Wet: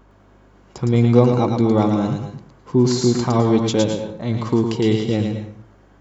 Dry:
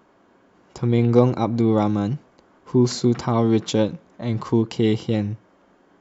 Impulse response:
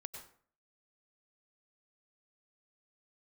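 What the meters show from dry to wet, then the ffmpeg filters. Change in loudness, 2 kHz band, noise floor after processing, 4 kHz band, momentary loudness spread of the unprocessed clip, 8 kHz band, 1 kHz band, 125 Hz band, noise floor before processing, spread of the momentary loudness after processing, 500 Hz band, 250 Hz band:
+2.5 dB, +3.0 dB, -51 dBFS, +3.5 dB, 10 LU, n/a, +3.0 dB, +3.0 dB, -58 dBFS, 11 LU, +2.5 dB, +2.5 dB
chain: -filter_complex "[0:a]aeval=exprs='val(0)+0.00224*(sin(2*PI*50*n/s)+sin(2*PI*2*50*n/s)/2+sin(2*PI*3*50*n/s)/3+sin(2*PI*4*50*n/s)/4+sin(2*PI*5*50*n/s)/5)':c=same,asplit=2[a][b];[b]aemphasis=mode=production:type=cd[c];[1:a]atrim=start_sample=2205,adelay=111[d];[c][d]afir=irnorm=-1:irlink=0,volume=-1dB[e];[a][e]amix=inputs=2:normalize=0,volume=1.5dB"

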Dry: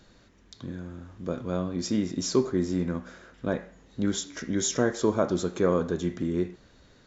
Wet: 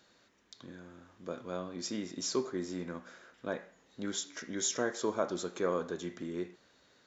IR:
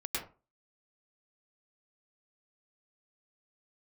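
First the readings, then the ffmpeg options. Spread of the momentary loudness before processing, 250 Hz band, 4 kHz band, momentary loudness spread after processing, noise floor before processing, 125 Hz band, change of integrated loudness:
14 LU, -11.0 dB, -4.0 dB, 17 LU, -58 dBFS, -15.0 dB, -8.0 dB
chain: -af "highpass=f=540:p=1,volume=-4dB"

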